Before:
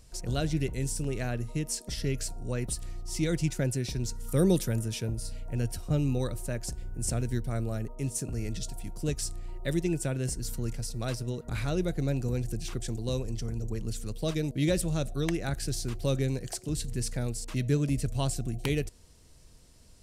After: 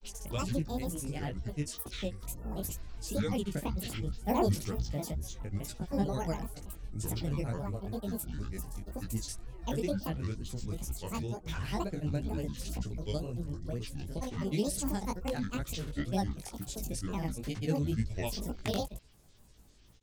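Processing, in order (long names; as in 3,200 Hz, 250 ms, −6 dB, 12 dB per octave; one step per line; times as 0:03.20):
granular cloud, pitch spread up and down by 12 semitones
chorus effect 2.1 Hz, delay 16 ms, depth 5 ms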